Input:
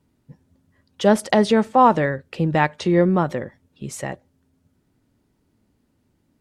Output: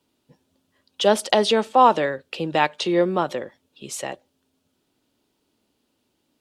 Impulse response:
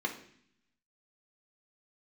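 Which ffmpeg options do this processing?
-filter_complex "[0:a]aexciter=amount=7.7:drive=6.5:freq=2900,acrossover=split=280 2800:gain=0.178 1 0.1[link_01][link_02][link_03];[link_01][link_02][link_03]amix=inputs=3:normalize=0"

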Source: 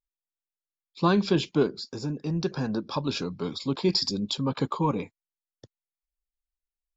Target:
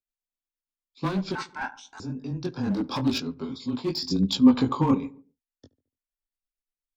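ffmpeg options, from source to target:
ffmpeg -i in.wav -filter_complex "[0:a]asettb=1/sr,asplit=3[link_01][link_02][link_03];[link_01]atrim=end=2.634[link_04];[link_02]atrim=start=2.63:end=3.18,asetpts=PTS-STARTPTS,afade=type=in:duration=0.004:curve=qsin,afade=type=out:start_time=0.546:duration=0.004:curve=qsin,acontrast=76[link_05];[link_03]atrim=start=3.176[link_06];[link_04][link_05]acrossfade=duration=0.004:curve1=hsin:curve2=qsin[link_07];[link_07][link_06]acrossfade=duration=0.004:curve1=qsin:curve2=hsin,flanger=delay=18.5:depth=5.5:speed=0.91,asoftclip=type=hard:threshold=-22.5dB,afreqshift=-16,asettb=1/sr,asplit=3[link_08][link_09][link_10];[link_08]atrim=end=1.354[link_11];[link_09]atrim=start=1.35:end=2,asetpts=PTS-STARTPTS,afade=type=in:duration=0.004:curve=qsin,afade=type=out:start_time=0.646:duration=0.004:curve=qsin,aeval=exprs='val(0)*sin(2*PI*1200*n/s)':channel_layout=same[link_12];[link_10]atrim=start=1.996[link_13];[link_11][link_12]acrossfade=duration=0.004:curve1=hsin:curve2=qsin[link_14];[link_14][link_13]acrossfade=duration=0.004:curve1=qsin:curve2=hsin,asettb=1/sr,asplit=3[link_15][link_16][link_17];[link_15]atrim=end=4.114[link_18];[link_16]atrim=start=4.11:end=4.95,asetpts=PTS-STARTPTS,afade=type=in:duration=0.004:curve=qsin,afade=type=out:start_time=0.836:duration=0.004:curve=qsin,acontrast=77[link_19];[link_17]atrim=start=4.946[link_20];[link_18][link_19]acrossfade=duration=0.004:curve1=hsin:curve2=qsin[link_21];[link_21][link_20]acrossfade=duration=0.004:curve1=qsin:curve2=hsin,equalizer=frequency=260:width_type=o:width=0.28:gain=11.5,asplit=2[link_22][link_23];[link_23]adelay=72,lowpass=frequency=1200:poles=1,volume=-17dB,asplit=2[link_24][link_25];[link_25]adelay=72,lowpass=frequency=1200:poles=1,volume=0.47,asplit=2[link_26][link_27];[link_27]adelay=72,lowpass=frequency=1200:poles=1,volume=0.47,asplit=2[link_28][link_29];[link_29]adelay=72,lowpass=frequency=1200:poles=1,volume=0.47[link_30];[link_22][link_24][link_26][link_28][link_30]amix=inputs=5:normalize=0,tremolo=f=8.5:d=0.47" out.wav

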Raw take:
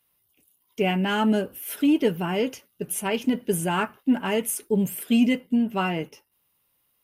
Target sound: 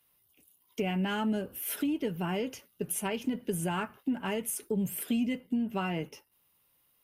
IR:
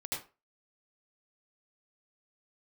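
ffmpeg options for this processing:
-filter_complex "[0:a]acrossover=split=130[link_01][link_02];[link_02]acompressor=threshold=-30dB:ratio=6[link_03];[link_01][link_03]amix=inputs=2:normalize=0"

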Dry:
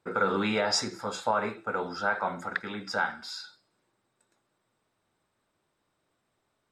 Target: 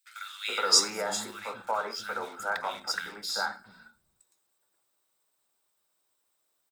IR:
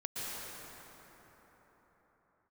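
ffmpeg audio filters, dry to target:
-filter_complex "[0:a]aemphasis=mode=production:type=riaa,asplit=2[link_01][link_02];[link_02]acrusher=bits=5:mix=0:aa=0.5,volume=-6dB[link_03];[link_01][link_03]amix=inputs=2:normalize=0,acrossover=split=220|1900[link_04][link_05][link_06];[link_05]adelay=420[link_07];[link_04]adelay=720[link_08];[link_08][link_07][link_06]amix=inputs=3:normalize=0,volume=-5.5dB"

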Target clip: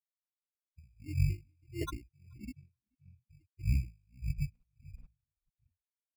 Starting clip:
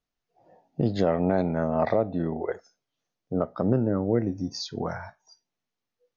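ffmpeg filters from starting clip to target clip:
ffmpeg -i in.wav -filter_complex "[0:a]aeval=exprs='val(0)+0.00562*sin(2*PI*510*n/s)':channel_layout=same,equalizer=frequency=550:width=0.55:gain=-11,bandreject=frequency=60:width_type=h:width=6,bandreject=frequency=120:width_type=h:width=6,bandreject=frequency=180:width_type=h:width=6,asplit=2[link_01][link_02];[link_02]acompressor=threshold=-44dB:ratio=8,volume=-2dB[link_03];[link_01][link_03]amix=inputs=2:normalize=0,afftfilt=real='re*gte(hypot(re,im),0.126)':imag='im*gte(hypot(re,im),0.126)':win_size=1024:overlap=0.75,asetrate=23361,aresample=44100,atempo=1.88775,aphaser=in_gain=1:out_gain=1:delay=3.2:decay=0.63:speed=0.89:type=triangular,acrusher=samples=18:mix=1:aa=0.000001,asplit=2[link_04][link_05];[link_05]adelay=430,lowpass=frequency=2100:poles=1,volume=-15.5dB,asplit=2[link_06][link_07];[link_07]adelay=430,lowpass=frequency=2100:poles=1,volume=0.16[link_08];[link_04][link_06][link_08]amix=inputs=3:normalize=0,aeval=exprs='val(0)*pow(10,-39*(0.5-0.5*cos(2*PI*1.6*n/s))/20)':channel_layout=same" out.wav

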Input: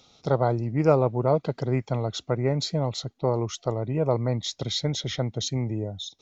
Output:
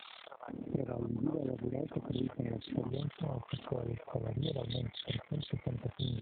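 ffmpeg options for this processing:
ffmpeg -i in.wav -filter_complex "[0:a]aeval=exprs='val(0)+0.5*0.0188*sgn(val(0))':channel_layout=same,asetnsamples=nb_out_samples=441:pad=0,asendcmd='2.4 equalizer g -4.5',equalizer=frequency=280:width=1.8:gain=13.5,acompressor=threshold=-28dB:ratio=8,tremolo=f=37:d=0.919,acrossover=split=750[link_01][link_02];[link_01]adelay=480[link_03];[link_03][link_02]amix=inputs=2:normalize=0" -ar 8000 -c:a libopencore_amrnb -b:a 7950 out.amr

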